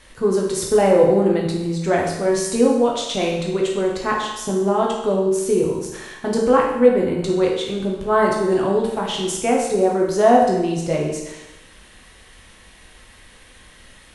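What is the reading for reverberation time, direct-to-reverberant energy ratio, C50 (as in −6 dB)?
0.95 s, −2.0 dB, 3.0 dB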